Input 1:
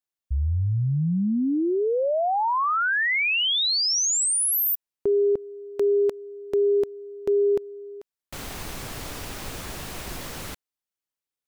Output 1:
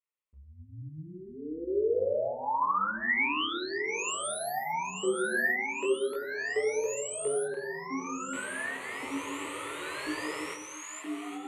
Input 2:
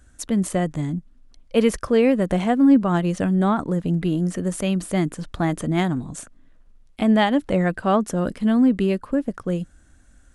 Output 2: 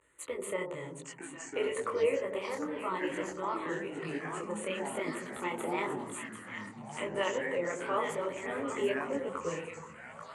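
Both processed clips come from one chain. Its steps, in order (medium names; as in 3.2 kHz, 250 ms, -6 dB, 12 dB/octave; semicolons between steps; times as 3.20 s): in parallel at +1.5 dB: level held to a coarse grid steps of 22 dB; on the sum: peak limiter -13.5 dBFS; gain riding within 4 dB 2 s; AM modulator 150 Hz, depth 30%; two-band feedback delay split 920 Hz, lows 92 ms, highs 786 ms, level -7 dB; wow and flutter 0.36 Hz 130 cents; static phaser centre 1.1 kHz, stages 8; ever faster or slower copies 787 ms, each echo -6 st, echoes 3, each echo -6 dB; cabinet simulation 290–9200 Hz, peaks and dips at 320 Hz -6 dB, 880 Hz +3 dB, 1.8 kHz +10 dB, 3.6 kHz -6 dB, 5.3 kHz -10 dB; detune thickener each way 34 cents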